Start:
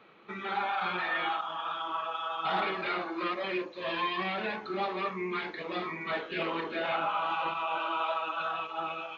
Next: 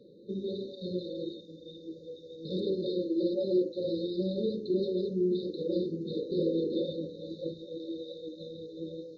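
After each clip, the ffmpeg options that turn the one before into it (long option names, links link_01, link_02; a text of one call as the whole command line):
ffmpeg -i in.wav -af "aemphasis=mode=reproduction:type=75kf,afftfilt=real='re*(1-between(b*sr/4096,580,3600))':imag='im*(1-between(b*sr/4096,580,3600))':win_size=4096:overlap=0.75,volume=8dB" out.wav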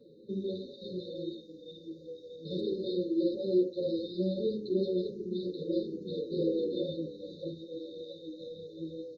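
ffmpeg -i in.wav -filter_complex "[0:a]asplit=2[link_01][link_02];[link_02]adelay=8.8,afreqshift=-1.6[link_03];[link_01][link_03]amix=inputs=2:normalize=1,volume=1.5dB" out.wav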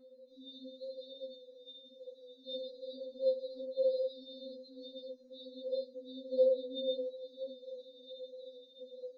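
ffmpeg -i in.wav -af "bandpass=frequency=1100:width_type=q:width=1.1:csg=0,afftfilt=real='re*3.46*eq(mod(b,12),0)':imag='im*3.46*eq(mod(b,12),0)':win_size=2048:overlap=0.75,volume=9dB" out.wav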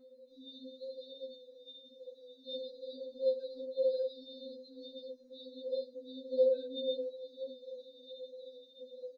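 ffmpeg -i in.wav -filter_complex "[0:a]asplit=2[link_01][link_02];[link_02]adelay=140,highpass=300,lowpass=3400,asoftclip=type=hard:threshold=-27.5dB,volume=-29dB[link_03];[link_01][link_03]amix=inputs=2:normalize=0" out.wav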